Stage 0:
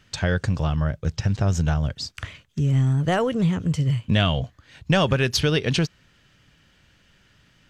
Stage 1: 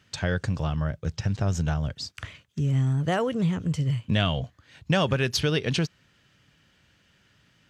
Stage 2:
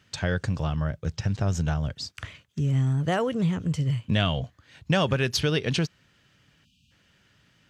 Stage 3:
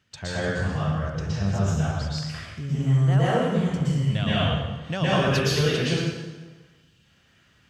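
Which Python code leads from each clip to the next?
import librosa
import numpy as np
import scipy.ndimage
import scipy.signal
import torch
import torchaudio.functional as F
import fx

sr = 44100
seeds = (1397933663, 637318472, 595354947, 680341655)

y1 = scipy.signal.sosfilt(scipy.signal.butter(2, 67.0, 'highpass', fs=sr, output='sos'), x)
y1 = y1 * librosa.db_to_amplitude(-3.5)
y2 = fx.spec_erase(y1, sr, start_s=6.65, length_s=0.26, low_hz=290.0, high_hz=2400.0)
y3 = fx.rev_plate(y2, sr, seeds[0], rt60_s=1.3, hf_ratio=0.8, predelay_ms=105, drr_db=-10.0)
y3 = y3 * librosa.db_to_amplitude(-7.5)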